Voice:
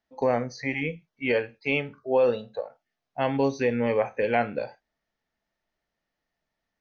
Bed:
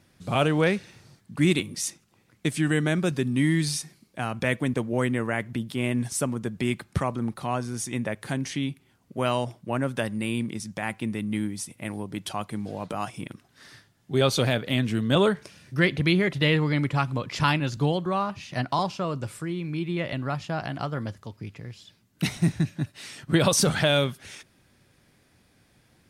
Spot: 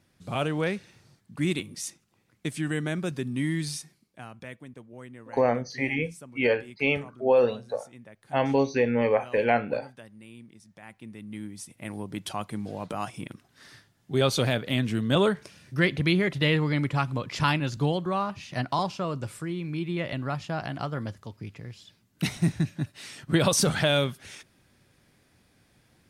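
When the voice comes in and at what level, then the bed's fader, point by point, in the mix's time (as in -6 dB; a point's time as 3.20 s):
5.15 s, +1.0 dB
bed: 3.74 s -5.5 dB
4.68 s -19.5 dB
10.62 s -19.5 dB
12.05 s -1.5 dB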